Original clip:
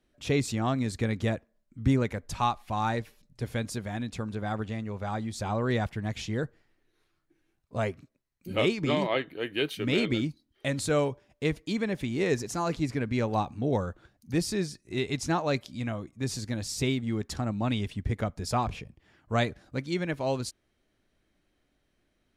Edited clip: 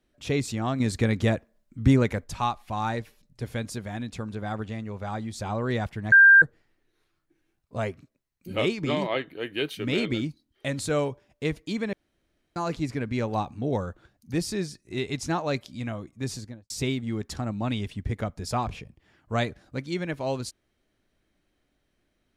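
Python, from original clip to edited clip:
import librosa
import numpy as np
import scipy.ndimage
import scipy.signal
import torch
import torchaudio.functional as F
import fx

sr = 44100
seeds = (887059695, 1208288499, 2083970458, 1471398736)

y = fx.studio_fade_out(x, sr, start_s=16.28, length_s=0.42)
y = fx.edit(y, sr, fx.clip_gain(start_s=0.8, length_s=1.44, db=5.0),
    fx.bleep(start_s=6.12, length_s=0.3, hz=1590.0, db=-10.0),
    fx.room_tone_fill(start_s=11.93, length_s=0.63), tone=tone)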